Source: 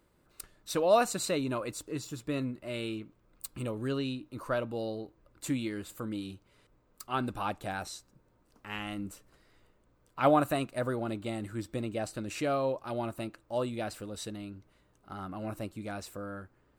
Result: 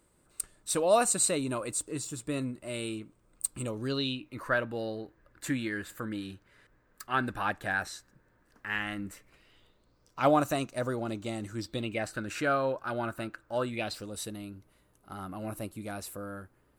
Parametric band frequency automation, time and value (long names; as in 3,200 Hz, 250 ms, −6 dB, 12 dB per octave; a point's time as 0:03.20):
parametric band +14.5 dB 0.46 octaves
0:03.57 8,500 Hz
0:04.46 1,700 Hz
0:09.01 1,700 Hz
0:10.21 6,200 Hz
0:11.55 6,200 Hz
0:12.13 1,500 Hz
0:13.66 1,500 Hz
0:14.20 11,000 Hz